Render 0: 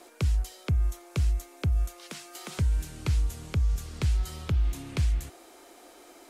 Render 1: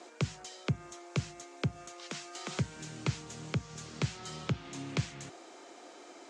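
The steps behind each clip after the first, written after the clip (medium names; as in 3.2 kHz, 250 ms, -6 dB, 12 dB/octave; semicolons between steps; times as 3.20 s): elliptic band-pass 130–7100 Hz, stop band 40 dB; trim +1 dB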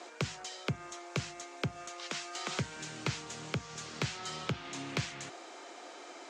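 overdrive pedal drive 10 dB, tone 5.4 kHz, clips at -20 dBFS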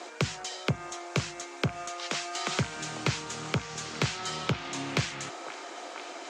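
repeats whose band climbs or falls 495 ms, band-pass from 710 Hz, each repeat 0.7 oct, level -6 dB; trim +6 dB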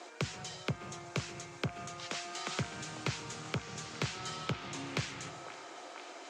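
reverberation RT60 0.90 s, pre-delay 124 ms, DRR 12.5 dB; trim -7 dB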